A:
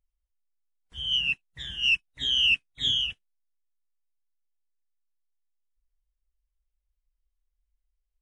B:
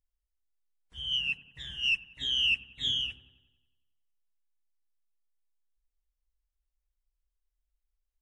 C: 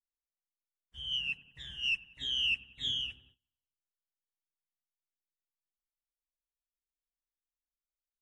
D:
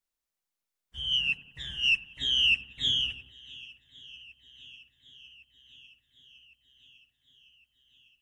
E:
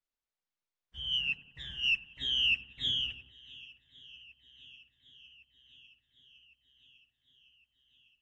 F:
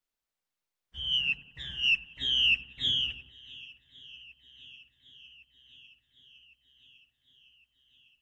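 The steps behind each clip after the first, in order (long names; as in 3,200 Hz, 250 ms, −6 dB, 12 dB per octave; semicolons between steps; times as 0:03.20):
delay with a low-pass on its return 92 ms, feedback 57%, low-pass 1,200 Hz, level −9.5 dB; level −4.5 dB
noise gate −59 dBFS, range −20 dB; level −4 dB
feedback echo with a long and a short gap by turns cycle 1,108 ms, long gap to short 1.5 to 1, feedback 61%, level −23 dB; level +7 dB
low-pass filter 5,000 Hz 12 dB per octave; level −4 dB
hum removal 48.81 Hz, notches 3; level +3.5 dB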